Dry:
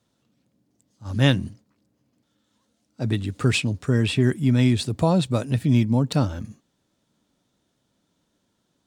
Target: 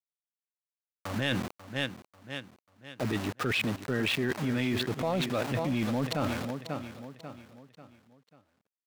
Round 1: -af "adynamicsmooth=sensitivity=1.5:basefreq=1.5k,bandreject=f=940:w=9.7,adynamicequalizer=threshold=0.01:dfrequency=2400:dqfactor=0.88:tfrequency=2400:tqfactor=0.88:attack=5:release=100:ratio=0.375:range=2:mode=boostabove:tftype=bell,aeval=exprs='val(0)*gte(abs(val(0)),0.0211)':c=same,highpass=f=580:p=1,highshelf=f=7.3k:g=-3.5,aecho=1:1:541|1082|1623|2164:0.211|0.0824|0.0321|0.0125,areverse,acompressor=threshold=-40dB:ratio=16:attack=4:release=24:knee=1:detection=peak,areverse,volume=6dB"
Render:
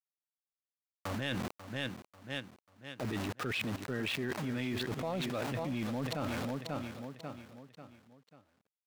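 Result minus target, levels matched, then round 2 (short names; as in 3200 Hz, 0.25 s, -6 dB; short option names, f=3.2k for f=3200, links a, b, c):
compressor: peak gain reduction +6.5 dB
-af "adynamicsmooth=sensitivity=1.5:basefreq=1.5k,bandreject=f=940:w=9.7,adynamicequalizer=threshold=0.01:dfrequency=2400:dqfactor=0.88:tfrequency=2400:tqfactor=0.88:attack=5:release=100:ratio=0.375:range=2:mode=boostabove:tftype=bell,aeval=exprs='val(0)*gte(abs(val(0)),0.0211)':c=same,highpass=f=580:p=1,highshelf=f=7.3k:g=-3.5,aecho=1:1:541|1082|1623|2164:0.211|0.0824|0.0321|0.0125,areverse,acompressor=threshold=-33dB:ratio=16:attack=4:release=24:knee=1:detection=peak,areverse,volume=6dB"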